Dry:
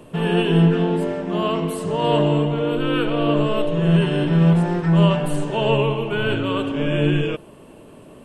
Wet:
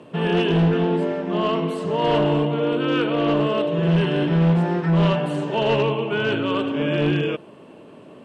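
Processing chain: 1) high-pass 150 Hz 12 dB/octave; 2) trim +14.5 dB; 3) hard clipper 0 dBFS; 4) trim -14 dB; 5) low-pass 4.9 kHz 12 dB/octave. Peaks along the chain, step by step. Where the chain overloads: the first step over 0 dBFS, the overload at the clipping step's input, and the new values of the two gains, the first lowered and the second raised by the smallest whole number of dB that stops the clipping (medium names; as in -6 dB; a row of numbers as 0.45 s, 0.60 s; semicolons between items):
-5.0 dBFS, +9.5 dBFS, 0.0 dBFS, -14.0 dBFS, -13.5 dBFS; step 2, 9.5 dB; step 2 +4.5 dB, step 4 -4 dB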